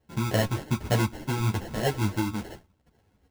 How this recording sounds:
phaser sweep stages 8, 3.4 Hz, lowest notch 530–1,200 Hz
aliases and images of a low sample rate 1,200 Hz, jitter 0%
a shimmering, thickened sound

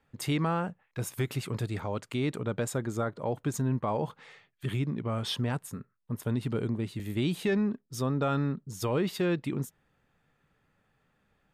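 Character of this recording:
background noise floor −74 dBFS
spectral slope −6.0 dB per octave

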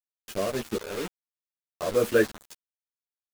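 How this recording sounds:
tremolo saw up 1.3 Hz, depth 90%
a quantiser's noise floor 6 bits, dither none
a shimmering, thickened sound

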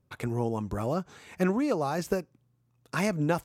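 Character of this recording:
background noise floor −71 dBFS
spectral slope −5.0 dB per octave

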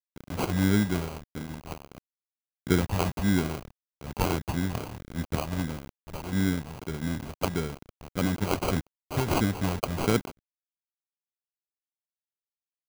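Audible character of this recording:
a quantiser's noise floor 6 bits, dither none
phaser sweep stages 2, 1.6 Hz, lowest notch 300–1,400 Hz
aliases and images of a low sample rate 1,800 Hz, jitter 0%

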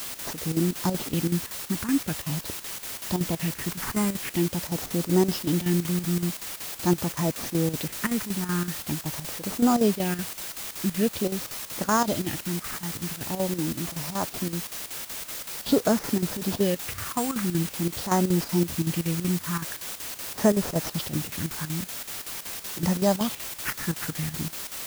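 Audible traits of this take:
aliases and images of a low sample rate 8,100 Hz
phaser sweep stages 4, 0.45 Hz, lowest notch 560–3,300 Hz
a quantiser's noise floor 6 bits, dither triangular
chopped level 5.3 Hz, depth 65%, duty 75%

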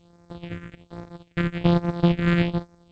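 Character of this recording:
a buzz of ramps at a fixed pitch in blocks of 256 samples
phaser sweep stages 4, 1.2 Hz, lowest notch 730–2,900 Hz
tremolo saw up 12 Hz, depth 35%
G.722

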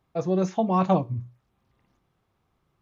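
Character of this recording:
background noise floor −73 dBFS
spectral slope −3.0 dB per octave

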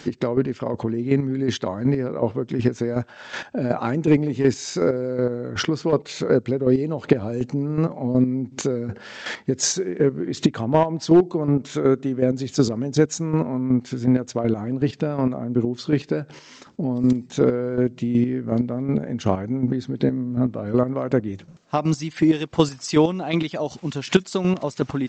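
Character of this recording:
chopped level 2.7 Hz, depth 60%, duty 25%
G.722

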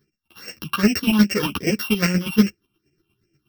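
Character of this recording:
a buzz of ramps at a fixed pitch in blocks of 16 samples
phaser sweep stages 6, 2.5 Hz, lowest notch 490–1,000 Hz
chopped level 8.4 Hz, depth 60%, duty 25%
a shimmering, thickened sound

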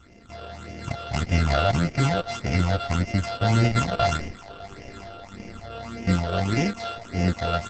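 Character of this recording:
a buzz of ramps at a fixed pitch in blocks of 64 samples
phaser sweep stages 8, 1.7 Hz, lowest notch 260–1,200 Hz
a quantiser's noise floor 12 bits, dither none
Opus

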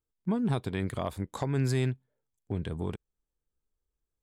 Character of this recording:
background noise floor −88 dBFS
spectral slope −7.0 dB per octave

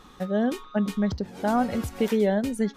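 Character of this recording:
background noise floor −50 dBFS
spectral slope −6.0 dB per octave

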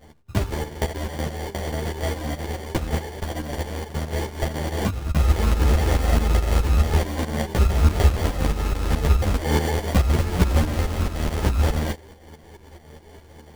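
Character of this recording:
a buzz of ramps at a fixed pitch in blocks of 32 samples
tremolo saw up 4.7 Hz, depth 70%
aliases and images of a low sample rate 1,300 Hz, jitter 0%
a shimmering, thickened sound

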